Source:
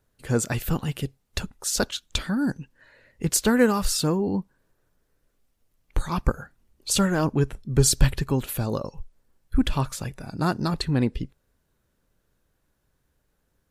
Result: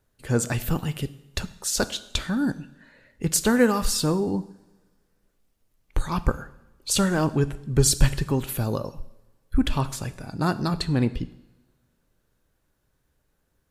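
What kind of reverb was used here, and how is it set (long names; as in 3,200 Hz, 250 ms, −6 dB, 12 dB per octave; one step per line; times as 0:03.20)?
coupled-rooms reverb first 0.8 s, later 2 s, from −20 dB, DRR 13 dB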